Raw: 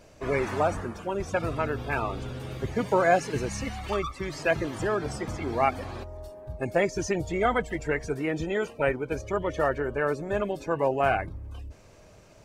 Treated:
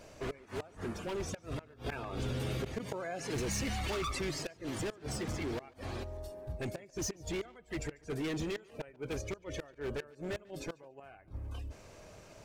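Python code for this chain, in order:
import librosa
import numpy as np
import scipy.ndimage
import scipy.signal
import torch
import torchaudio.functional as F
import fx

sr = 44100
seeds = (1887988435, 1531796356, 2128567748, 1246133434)

y = fx.low_shelf(x, sr, hz=240.0, db=-3.5)
y = fx.gate_flip(y, sr, shuts_db=-18.0, range_db=-28)
y = np.clip(10.0 ** (33.0 / 20.0) * y, -1.0, 1.0) / 10.0 ** (33.0 / 20.0)
y = fx.dynamic_eq(y, sr, hz=1000.0, q=0.85, threshold_db=-54.0, ratio=4.0, max_db=-6)
y = fx.echo_tape(y, sr, ms=144, feedback_pct=20, wet_db=-22.0, lp_hz=5900.0, drive_db=34.0, wow_cents=12)
y = fx.env_flatten(y, sr, amount_pct=70, at=(1.86, 4.31))
y = y * librosa.db_to_amplitude(1.0)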